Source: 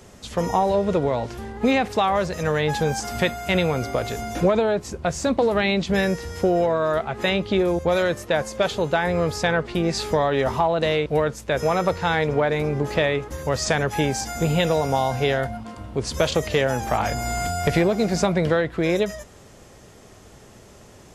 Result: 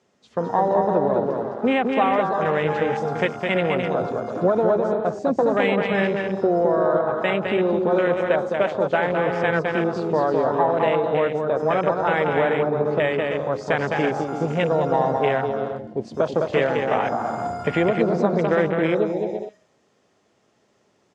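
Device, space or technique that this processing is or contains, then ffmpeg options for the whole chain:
over-cleaned archive recording: -af "highpass=190,lowpass=5.7k,aecho=1:1:210|336|411.6|457|484.2:0.631|0.398|0.251|0.158|0.1,afwtdn=0.0501"

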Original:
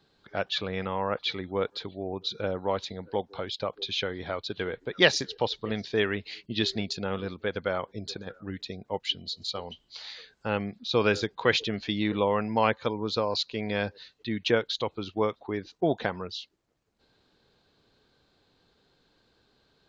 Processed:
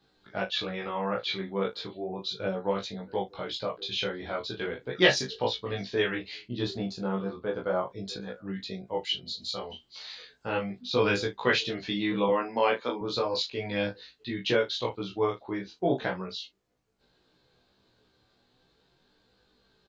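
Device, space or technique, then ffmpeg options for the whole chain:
double-tracked vocal: -filter_complex "[0:a]asettb=1/sr,asplit=3[a][b][c];[a]atrim=end=6.514[d];[b]atrim=start=6.51:end=7.86,asetpts=PTS-STARTPTS,afade=t=in:d=0.004:c=qsin,afade=t=out:st=1.346:d=0.004:c=qsin,highshelf=f=1.5k:t=q:w=1.5:g=-8[e];[c]atrim=start=7.856[f];[d][e]acrossfade=d=0.004:c1=hsin:c2=qsin[g];[g][f]acrossfade=d=0.004:c1=qsin:c2=hsin,asettb=1/sr,asplit=3[h][i][j];[h]atrim=end=12.284[k];[i]atrim=start=12.28:end=13.01,asetpts=PTS-STARTPTS,afade=t=in:d=0.004:c=qsin,afade=t=out:st=0.726:d=0.004:c=qsin,highpass=f=200:w=0.5412,highpass=f=200:w=1.3066[l];[j]atrim=start=13.006[m];[k][l]acrossfade=d=0.004:c1=hsin:c2=qsin[n];[n][m]acrossfade=d=0.004:c1=qsin:c2=hsin,asplit=2[o][p];[p]adelay=16,volume=-2dB[q];[o][q]amix=inputs=2:normalize=0,flanger=delay=20:depth=5.6:speed=0.36,asplit=2[r][s];[s]adelay=36,volume=-12.5dB[t];[r][t]amix=inputs=2:normalize=0"

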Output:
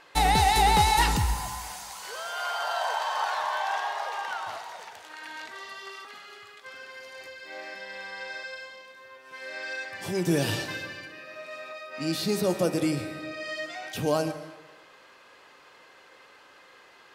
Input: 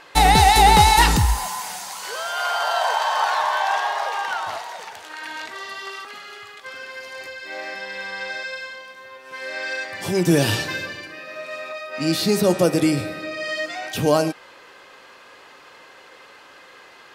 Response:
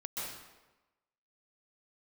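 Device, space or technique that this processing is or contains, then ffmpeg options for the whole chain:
saturated reverb return: -filter_complex "[0:a]asplit=2[a][b];[1:a]atrim=start_sample=2205[c];[b][c]afir=irnorm=-1:irlink=0,asoftclip=type=tanh:threshold=-6dB,volume=-12dB[d];[a][d]amix=inputs=2:normalize=0,volume=-9dB"

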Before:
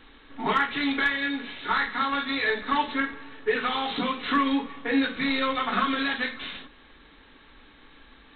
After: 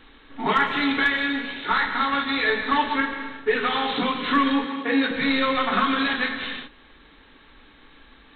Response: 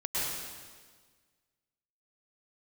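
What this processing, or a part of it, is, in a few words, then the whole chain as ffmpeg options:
keyed gated reverb: -filter_complex "[0:a]asplit=3[a][b][c];[1:a]atrim=start_sample=2205[d];[b][d]afir=irnorm=-1:irlink=0[e];[c]apad=whole_len=368588[f];[e][f]sidechaingate=range=-33dB:threshold=-42dB:ratio=16:detection=peak,volume=-12.5dB[g];[a][g]amix=inputs=2:normalize=0,asettb=1/sr,asplit=3[h][i][j];[h]atrim=end=4.644[k];[i]atrim=start=4.64:end=5.11,asetpts=PTS-STARTPTS,afade=t=in:d=0.004:c=qsin,afade=t=out:st=0.466:d=0.004:c=qsin,highpass=f=130:w=0.5412,highpass=f=130:w=1.3066[l];[j]atrim=start=5.106[m];[k][l]acrossfade=d=0.004:c1=hsin:c2=qsin[n];[n][m]acrossfade=d=0.004:c1=qsin:c2=hsin,volume=1.5dB"

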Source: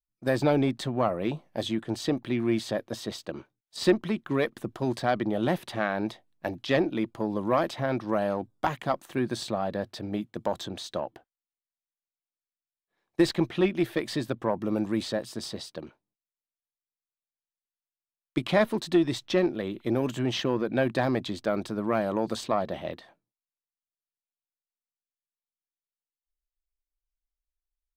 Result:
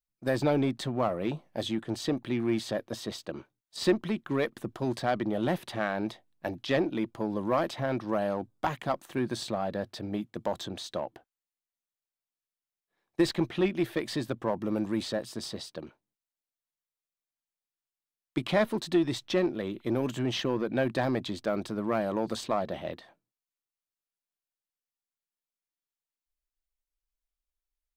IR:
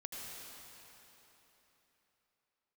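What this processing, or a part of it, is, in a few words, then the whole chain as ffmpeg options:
parallel distortion: -filter_complex "[0:a]asplit=2[a][b];[b]asoftclip=type=hard:threshold=-28dB,volume=-10.5dB[c];[a][c]amix=inputs=2:normalize=0,volume=-3.5dB"

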